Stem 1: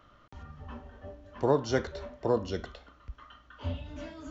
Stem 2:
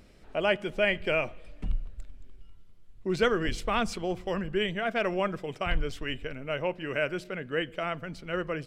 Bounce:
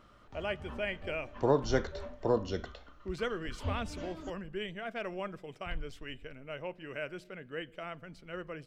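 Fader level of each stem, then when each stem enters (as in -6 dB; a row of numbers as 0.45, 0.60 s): -1.5, -10.0 dB; 0.00, 0.00 s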